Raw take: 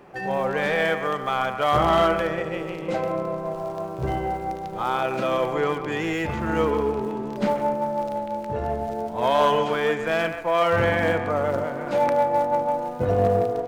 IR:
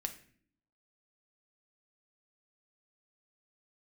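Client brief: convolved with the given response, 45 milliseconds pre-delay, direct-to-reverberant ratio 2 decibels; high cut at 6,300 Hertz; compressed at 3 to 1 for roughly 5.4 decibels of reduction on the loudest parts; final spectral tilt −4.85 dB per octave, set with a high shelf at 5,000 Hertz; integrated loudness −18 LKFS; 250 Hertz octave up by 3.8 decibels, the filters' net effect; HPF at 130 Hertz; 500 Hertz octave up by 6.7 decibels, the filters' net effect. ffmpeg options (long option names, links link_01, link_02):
-filter_complex "[0:a]highpass=130,lowpass=6300,equalizer=frequency=250:width_type=o:gain=3,equalizer=frequency=500:width_type=o:gain=7.5,highshelf=frequency=5000:gain=-6.5,acompressor=threshold=-18dB:ratio=3,asplit=2[link_01][link_02];[1:a]atrim=start_sample=2205,adelay=45[link_03];[link_02][link_03]afir=irnorm=-1:irlink=0,volume=-1.5dB[link_04];[link_01][link_04]amix=inputs=2:normalize=0,volume=2.5dB"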